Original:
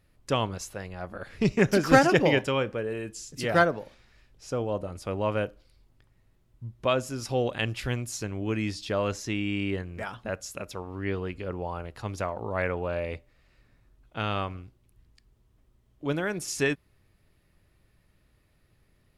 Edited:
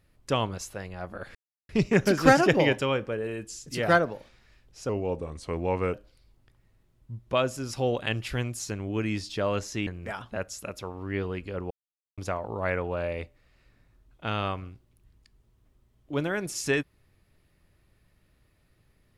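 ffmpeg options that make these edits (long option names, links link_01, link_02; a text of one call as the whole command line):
ffmpeg -i in.wav -filter_complex "[0:a]asplit=7[link_01][link_02][link_03][link_04][link_05][link_06][link_07];[link_01]atrim=end=1.35,asetpts=PTS-STARTPTS,afade=type=out:start_time=1.346:duration=0.004:curve=hsin,apad=pad_dur=0.34[link_08];[link_02]atrim=start=1.35:end=4.554,asetpts=PTS-STARTPTS,afade=type=in:duration=0.004:curve=hsin[link_09];[link_03]atrim=start=4.55:end=5.46,asetpts=PTS-STARTPTS,asetrate=38367,aresample=44100[link_10];[link_04]atrim=start=5.456:end=9.392[link_11];[link_05]atrim=start=9.788:end=11.63,asetpts=PTS-STARTPTS,afade=type=out:start_time=1.838:duration=0.004:curve=hsin[link_12];[link_06]atrim=start=11.63:end=12.1,asetpts=PTS-STARTPTS,volume=0[link_13];[link_07]atrim=start=12.1,asetpts=PTS-STARTPTS,afade=type=in:duration=0.004:curve=hsin[link_14];[link_08][link_09]concat=n=2:v=0:a=1[link_15];[link_15][link_10]acrossfade=duration=0.004:curve1=hsin:curve2=hsin[link_16];[link_16][link_11]acrossfade=duration=0.004:curve1=hsin:curve2=hsin[link_17];[link_12][link_13][link_14]concat=n=3:v=0:a=1[link_18];[link_17][link_18]acrossfade=duration=0.004:curve1=hsin:curve2=hsin" out.wav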